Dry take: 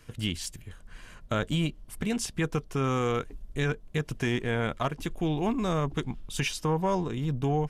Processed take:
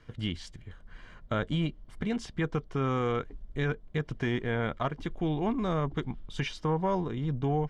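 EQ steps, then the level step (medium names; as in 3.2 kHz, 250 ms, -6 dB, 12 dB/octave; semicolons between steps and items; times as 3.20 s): low-pass 3.5 kHz 12 dB/octave; band-stop 2.6 kHz, Q 6.9; -1.5 dB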